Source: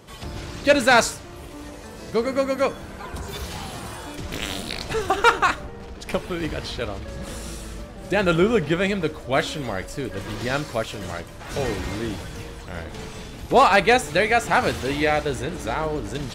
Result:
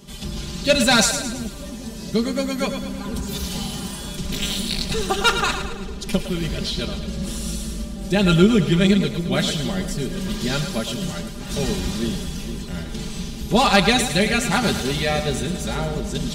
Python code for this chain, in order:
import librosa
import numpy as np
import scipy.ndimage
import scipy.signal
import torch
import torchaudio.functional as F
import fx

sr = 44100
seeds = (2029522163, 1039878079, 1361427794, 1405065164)

y = fx.band_shelf(x, sr, hz=960.0, db=-10.0, octaves=2.9)
y = y + 0.9 * np.pad(y, (int(5.0 * sr / 1000.0), 0))[:len(y)]
y = fx.echo_split(y, sr, split_hz=450.0, low_ms=464, high_ms=109, feedback_pct=52, wet_db=-9.0)
y = F.gain(torch.from_numpy(y), 4.0).numpy()